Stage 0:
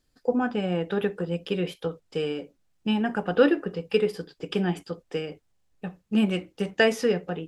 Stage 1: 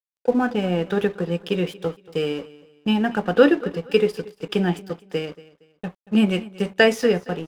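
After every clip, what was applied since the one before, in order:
dead-zone distortion −46.5 dBFS
repeating echo 232 ms, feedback 31%, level −20 dB
level +5 dB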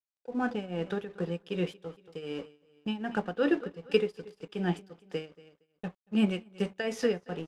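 low-pass filter 9,800 Hz 12 dB per octave
shaped tremolo triangle 2.6 Hz, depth 85%
level −6 dB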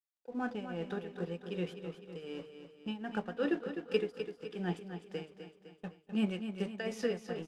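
mains-hum notches 50/100/150 Hz
repeating echo 254 ms, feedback 52%, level −9 dB
level −6 dB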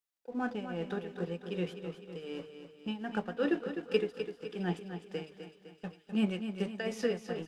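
mains-hum notches 50/100/150 Hz
delay with a high-pass on its return 663 ms, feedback 72%, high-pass 3,800 Hz, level −14 dB
level +2 dB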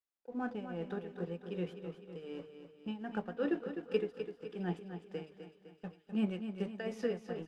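high-shelf EQ 2,400 Hz −8.5 dB
level −3 dB

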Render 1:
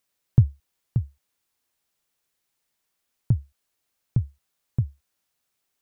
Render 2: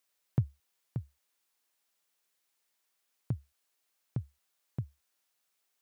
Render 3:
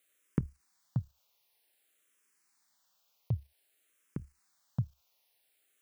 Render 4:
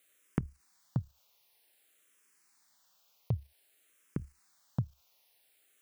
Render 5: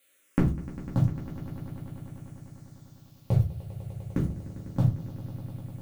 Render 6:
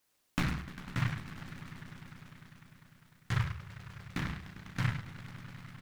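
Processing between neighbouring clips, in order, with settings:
high-pass filter 450 Hz 6 dB per octave; level −1 dB
output level in coarse steps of 9 dB; frequency shifter mixed with the dry sound −0.53 Hz; level +9.5 dB
downward compressor 2.5 to 1, threshold −34 dBFS, peak gain reduction 8 dB; level +4.5 dB
in parallel at −3.5 dB: bit-depth reduction 8 bits, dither none; on the sum: echo that builds up and dies away 100 ms, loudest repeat 5, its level −17 dB; rectangular room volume 140 cubic metres, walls furnished, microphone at 2.3 metres
single-tap delay 105 ms −9 dB; short delay modulated by noise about 1,500 Hz, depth 0.44 ms; level −8.5 dB

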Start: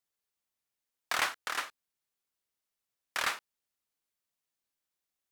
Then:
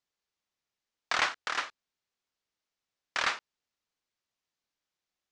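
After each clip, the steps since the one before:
low-pass filter 6,500 Hz 24 dB per octave
level +2.5 dB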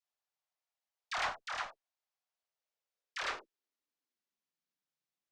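high-pass filter sweep 690 Hz → 110 Hz, 0:02.30–0:05.31
tube saturation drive 16 dB, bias 0.25
all-pass dispersion lows, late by 71 ms, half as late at 740 Hz
level −7.5 dB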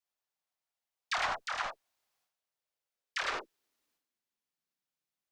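transient designer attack +7 dB, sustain +11 dB

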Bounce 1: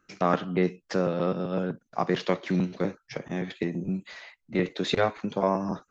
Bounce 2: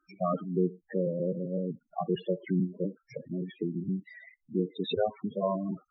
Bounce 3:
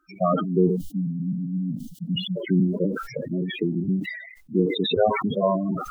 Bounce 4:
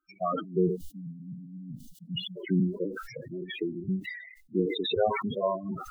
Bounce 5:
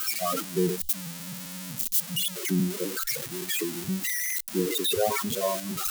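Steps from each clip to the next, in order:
spectral peaks only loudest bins 8; level −2 dB
time-frequency box erased 0:00.76–0:02.36, 280–2,800 Hz; level that may fall only so fast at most 66 dB per second; level +7.5 dB
noise reduction from a noise print of the clip's start 11 dB; level −5 dB
spike at every zero crossing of −19 dBFS

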